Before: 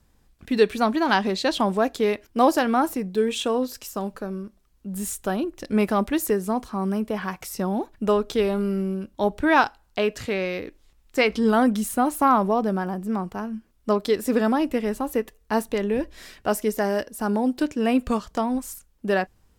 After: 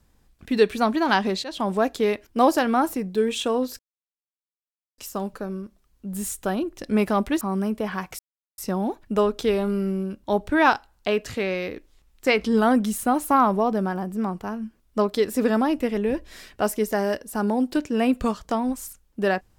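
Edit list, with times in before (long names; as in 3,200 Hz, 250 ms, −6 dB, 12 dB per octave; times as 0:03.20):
0:01.44–0:01.76: fade in, from −16 dB
0:03.79: splice in silence 1.19 s
0:06.22–0:06.71: remove
0:07.49: splice in silence 0.39 s
0:14.88–0:15.83: remove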